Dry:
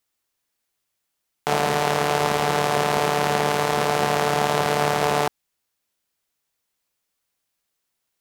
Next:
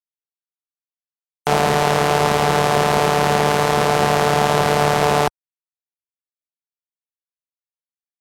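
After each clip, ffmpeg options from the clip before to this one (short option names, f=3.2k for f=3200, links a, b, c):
-filter_complex "[0:a]afftfilt=real='re*gte(hypot(re,im),0.00631)':imag='im*gte(hypot(re,im),0.00631)':win_size=1024:overlap=0.75,lowshelf=f=83:g=9,asplit=2[a][b];[b]acontrast=89,volume=-0.5dB[c];[a][c]amix=inputs=2:normalize=0,volume=-4.5dB"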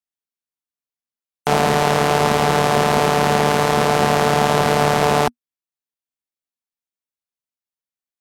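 -af "equalizer=f=240:t=o:w=0.26:g=7.5"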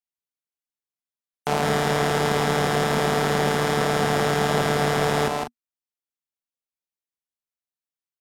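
-af "aecho=1:1:157.4|195.3:0.631|0.282,volume=-6.5dB"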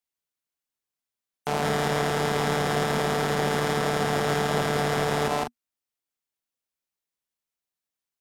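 -af "alimiter=limit=-18dB:level=0:latency=1:release=113,volume=4dB"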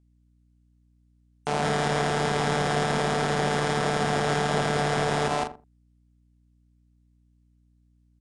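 -filter_complex "[0:a]aresample=22050,aresample=44100,asplit=2[a][b];[b]adelay=83,lowpass=f=860:p=1,volume=-11.5dB,asplit=2[c][d];[d]adelay=83,lowpass=f=860:p=1,volume=0.18[e];[a][c][e]amix=inputs=3:normalize=0,aeval=exprs='val(0)+0.000891*(sin(2*PI*60*n/s)+sin(2*PI*2*60*n/s)/2+sin(2*PI*3*60*n/s)/3+sin(2*PI*4*60*n/s)/4+sin(2*PI*5*60*n/s)/5)':c=same"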